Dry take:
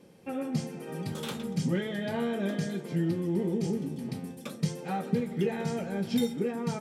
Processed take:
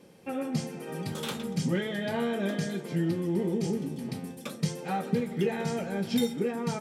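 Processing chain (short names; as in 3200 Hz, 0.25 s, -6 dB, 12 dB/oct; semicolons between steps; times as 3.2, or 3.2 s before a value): low shelf 430 Hz -3.5 dB; gain +3 dB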